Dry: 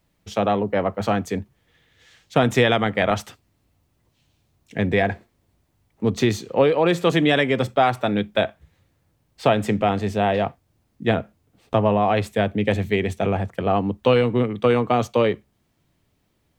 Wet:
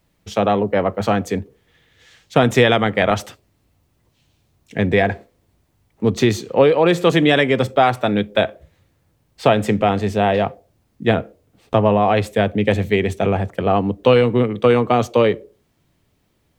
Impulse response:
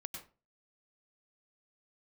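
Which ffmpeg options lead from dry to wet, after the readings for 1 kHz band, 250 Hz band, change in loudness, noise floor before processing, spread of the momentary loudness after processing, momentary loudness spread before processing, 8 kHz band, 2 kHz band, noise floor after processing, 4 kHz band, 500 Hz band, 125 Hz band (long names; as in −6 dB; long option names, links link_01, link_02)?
+3.5 dB, +3.5 dB, +3.5 dB, −68 dBFS, 8 LU, 8 LU, +3.5 dB, +3.5 dB, −64 dBFS, +3.5 dB, +4.0 dB, +3.5 dB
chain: -filter_complex "[0:a]asplit=2[link_01][link_02];[link_02]asuperpass=centerf=440:order=4:qfactor=1.6[link_03];[1:a]atrim=start_sample=2205[link_04];[link_03][link_04]afir=irnorm=-1:irlink=0,volume=-13dB[link_05];[link_01][link_05]amix=inputs=2:normalize=0,volume=3.5dB"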